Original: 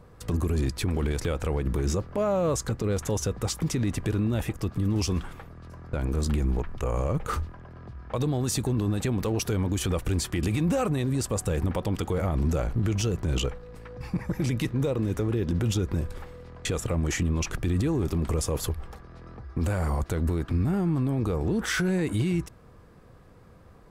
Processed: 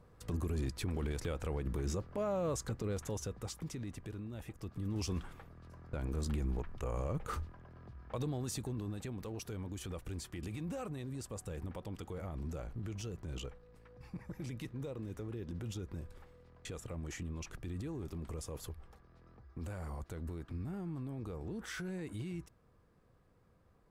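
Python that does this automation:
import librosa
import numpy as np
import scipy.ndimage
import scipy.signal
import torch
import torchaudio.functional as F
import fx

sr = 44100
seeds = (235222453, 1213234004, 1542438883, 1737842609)

y = fx.gain(x, sr, db=fx.line((2.82, -10.0), (4.3, -19.0), (5.1, -10.0), (8.13, -10.0), (9.15, -16.0)))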